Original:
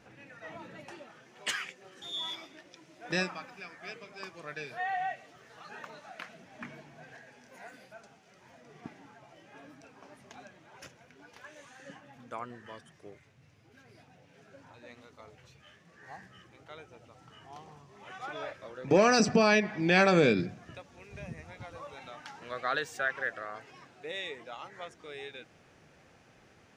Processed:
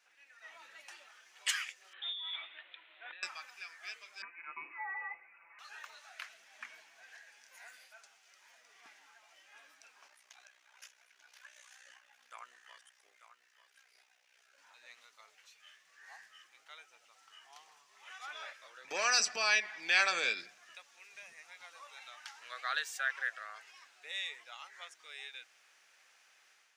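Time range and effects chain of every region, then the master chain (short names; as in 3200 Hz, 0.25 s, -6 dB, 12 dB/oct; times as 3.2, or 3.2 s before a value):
1.93–3.23 bell 190 Hz -11.5 dB 0.94 oct + negative-ratio compressor -42 dBFS + steep low-pass 3800 Hz 96 dB/oct
4.22–5.59 inverted band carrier 2700 Hz + tilt -4.5 dB/oct + comb 5.9 ms, depth 62%
10.08–14.58 low shelf 390 Hz -6 dB + AM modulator 62 Hz, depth 60% + echo 0.891 s -11 dB
whole clip: HPF 1400 Hz 12 dB/oct; high shelf 5100 Hz +6.5 dB; AGC gain up to 7 dB; gain -8 dB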